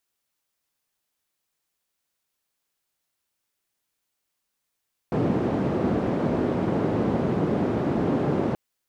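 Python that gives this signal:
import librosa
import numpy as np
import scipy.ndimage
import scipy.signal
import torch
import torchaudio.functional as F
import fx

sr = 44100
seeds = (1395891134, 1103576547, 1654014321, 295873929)

y = fx.band_noise(sr, seeds[0], length_s=3.43, low_hz=140.0, high_hz=340.0, level_db=-24.0)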